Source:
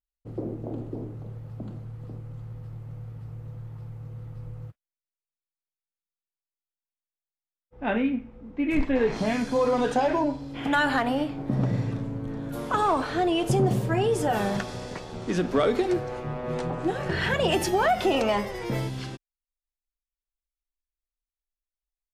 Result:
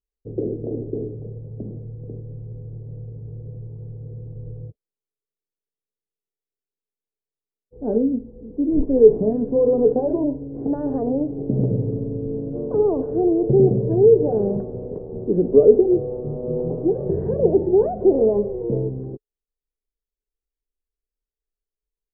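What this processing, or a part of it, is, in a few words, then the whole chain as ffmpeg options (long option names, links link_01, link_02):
under water: -af "lowpass=frequency=540:width=0.5412,lowpass=frequency=540:width=1.3066,equalizer=frequency=430:width_type=o:width=0.34:gain=12,highshelf=frequency=4400:gain=10,bandreject=frequency=1300:width=21,volume=4dB"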